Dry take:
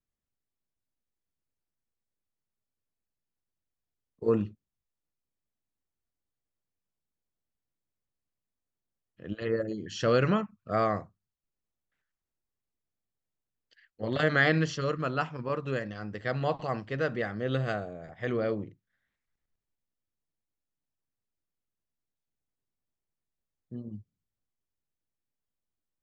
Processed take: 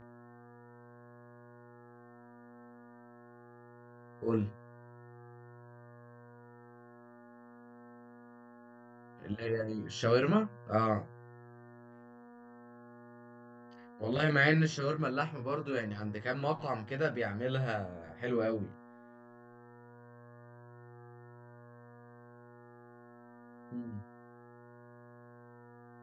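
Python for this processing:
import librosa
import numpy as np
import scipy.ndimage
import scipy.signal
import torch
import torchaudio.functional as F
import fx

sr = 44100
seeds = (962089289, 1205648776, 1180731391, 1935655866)

y = fx.dmg_buzz(x, sr, base_hz=120.0, harmonics=15, level_db=-50.0, tilt_db=-5, odd_only=False)
y = fx.chorus_voices(y, sr, voices=2, hz=0.19, base_ms=20, depth_ms=1.5, mix_pct=40)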